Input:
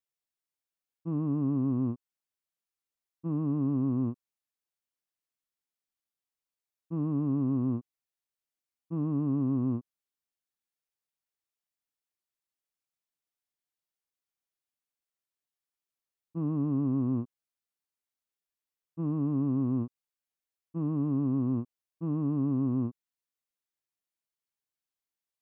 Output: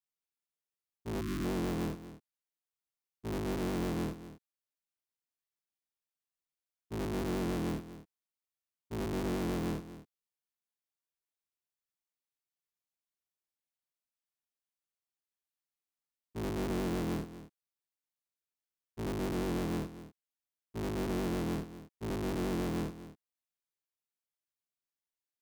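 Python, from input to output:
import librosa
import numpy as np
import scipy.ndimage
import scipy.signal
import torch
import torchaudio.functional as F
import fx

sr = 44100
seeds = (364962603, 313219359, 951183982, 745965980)

y = fx.cycle_switch(x, sr, every=3, mode='inverted')
y = fx.spec_box(y, sr, start_s=1.21, length_s=0.23, low_hz=380.0, high_hz=1000.0, gain_db=-28)
y = y + 10.0 ** (-14.0 / 20.0) * np.pad(y, (int(241 * sr / 1000.0), 0))[:len(y)]
y = F.gain(torch.from_numpy(y), -5.5).numpy()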